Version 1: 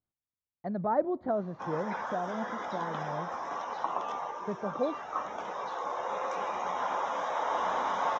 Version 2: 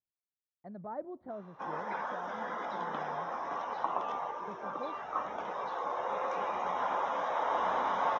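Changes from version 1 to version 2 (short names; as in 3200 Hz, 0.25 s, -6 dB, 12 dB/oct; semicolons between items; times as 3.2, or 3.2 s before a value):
speech -12.0 dB; master: add air absorption 130 m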